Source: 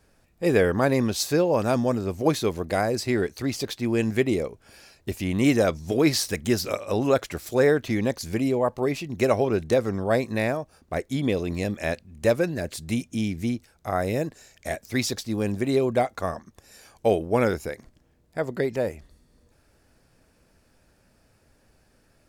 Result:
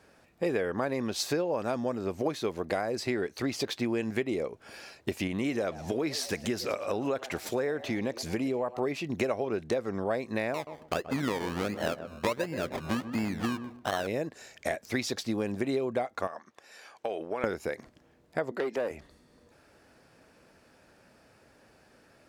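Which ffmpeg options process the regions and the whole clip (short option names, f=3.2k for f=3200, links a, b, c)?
-filter_complex "[0:a]asettb=1/sr,asplit=3[a][b][c];[a]atrim=end=5.274[d];[b]atrim=start=5.27:end=8.79,asetpts=PTS-STARTPTS,afade=t=in:d=0.004:c=qsin,afade=t=out:st=3.516:d=0.004:c=qsin,acompressor=threshold=-33dB:ratio=1.5:attack=3.2:release=140:knee=1:detection=peak,asplit=4[e][f][g][h];[f]adelay=113,afreqshift=120,volume=-19.5dB[i];[g]adelay=226,afreqshift=240,volume=-26.8dB[j];[h]adelay=339,afreqshift=360,volume=-34.2dB[k];[e][i][j][k]amix=inputs=4:normalize=0,atrim=end_sample=155232[l];[c]atrim=start=8.786[m];[d][l]acrossfade=d=0.004:c1=hsin:c2=qsin[n];[n][m]acrossfade=d=0.004:c1=qsin:c2=hsin,asettb=1/sr,asplit=3[o][p][q];[o]atrim=end=10.544[r];[p]atrim=start=10.54:end=14.07,asetpts=PTS-STARTPTS,afade=t=in:d=0.004:c=qsin,afade=t=out:st=3.526:d=0.004:c=qsin,acrusher=samples=26:mix=1:aa=0.000001:lfo=1:lforange=15.6:lforate=1.4,asplit=2[s][t];[t]adelay=128,lowpass=f=920:p=1,volume=-12.5dB,asplit=2[u][v];[v]adelay=128,lowpass=f=920:p=1,volume=0.23,asplit=2[w][x];[x]adelay=128,lowpass=f=920:p=1,volume=0.23[y];[s][u][w][y]amix=inputs=4:normalize=0,atrim=end_sample=155673[z];[q]atrim=start=14.066[aa];[r][z]acrossfade=d=0.004:c1=hsin:c2=qsin[ab];[ab][aa]acrossfade=d=0.004:c1=qsin:c2=hsin,asettb=1/sr,asplit=3[ac][ad][ae];[ac]atrim=end=16.274[af];[ad]atrim=start=16.27:end=17.44,asetpts=PTS-STARTPTS,afade=t=in:d=0.004:c=qsin,afade=t=out:st=1.166:d=0.004:c=qsin,highpass=f=890:p=1,highshelf=f=6.1k:g=-11,acompressor=threshold=-32dB:ratio=6:attack=3.2:release=140:knee=1:detection=peak[ag];[ae]atrim=start=17.436[ah];[af][ag]acrossfade=d=0.004:c1=hsin:c2=qsin[ai];[ai][ah]acrossfade=d=0.004:c1=qsin:c2=hsin,asettb=1/sr,asplit=3[aj][ak][al];[aj]atrim=end=18.514[am];[ak]atrim=start=18.51:end=18.91,asetpts=PTS-STARTPTS,afade=t=in:d=0.004:c=qsin,afade=t=out:st=0.396:d=0.004:c=qsin,highpass=f=240:w=0.5412,highpass=f=240:w=1.3066,aeval=exprs='(tanh(14.1*val(0)+0.3)-tanh(0.3))/14.1':c=same[an];[al]atrim=start=18.906[ao];[am][an]acrossfade=d=0.004:c1=hsin:c2=qsin[ap];[ap][ao]acrossfade=d=0.004:c1=qsin:c2=hsin,highpass=f=300:p=1,highshelf=f=5.6k:g=-11,acompressor=threshold=-34dB:ratio=6,volume=6.5dB"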